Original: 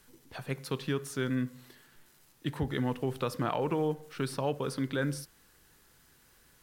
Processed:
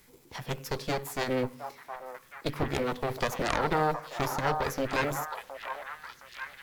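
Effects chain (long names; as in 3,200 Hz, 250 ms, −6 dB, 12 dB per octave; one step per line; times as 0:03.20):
harmonic generator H 4 −7 dB, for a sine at −16.5 dBFS
formants moved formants +4 semitones
echo through a band-pass that steps 716 ms, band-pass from 920 Hz, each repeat 0.7 octaves, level −3.5 dB
level +2 dB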